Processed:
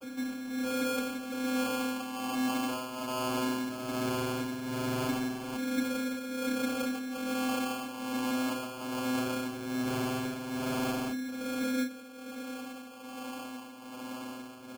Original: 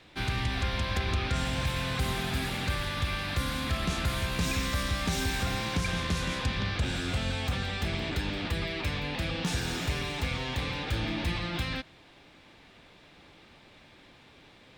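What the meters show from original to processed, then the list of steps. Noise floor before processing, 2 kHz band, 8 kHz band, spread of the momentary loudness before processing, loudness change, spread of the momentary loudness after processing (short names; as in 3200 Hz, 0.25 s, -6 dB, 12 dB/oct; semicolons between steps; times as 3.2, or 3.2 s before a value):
-56 dBFS, -6.0 dB, -1.5 dB, 3 LU, -3.0 dB, 11 LU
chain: in parallel at -5.5 dB: wrapped overs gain 30 dB; on the sum: LFO low-pass saw up 0.18 Hz 370–3000 Hz; modulation noise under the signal 11 dB; vocoder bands 32, saw 257 Hz; tremolo 1.2 Hz, depth 86%; sample-and-hold 23×; doubler 32 ms -9.5 dB; fast leveller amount 50%; gain -2.5 dB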